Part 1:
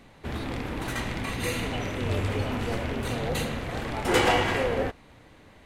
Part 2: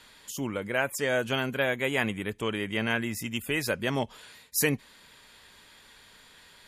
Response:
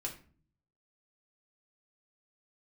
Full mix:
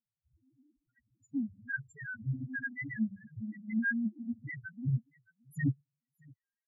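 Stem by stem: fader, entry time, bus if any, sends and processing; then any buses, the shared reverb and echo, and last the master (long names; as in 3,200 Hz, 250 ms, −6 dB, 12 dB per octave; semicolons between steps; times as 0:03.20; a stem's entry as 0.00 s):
−7.5 dB, 0.00 s, no send, no echo send, auto-filter low-pass square 1.4 Hz 350–1,600 Hz; phase shifter 0.61 Hz, delay 3.9 ms, feedback 33%; hard clipping −22.5 dBFS, distortion −9 dB
+3.0 dB, 0.95 s, send −12 dB, echo send −9 dB, no processing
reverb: on, RT60 0.45 s, pre-delay 3 ms
echo: repeating echo 624 ms, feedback 17%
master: octave-band graphic EQ 125/250/500/2,000/4,000/8,000 Hz +7/+5/−7/+8/−8/+9 dB; spectral peaks only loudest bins 1; expander for the loud parts 2.5 to 1, over −49 dBFS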